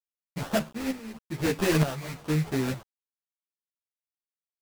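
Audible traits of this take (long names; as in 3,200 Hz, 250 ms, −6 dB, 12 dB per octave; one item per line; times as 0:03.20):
aliases and images of a low sample rate 2,200 Hz, jitter 20%
tremolo saw up 1.1 Hz, depth 65%
a quantiser's noise floor 8 bits, dither none
a shimmering, thickened sound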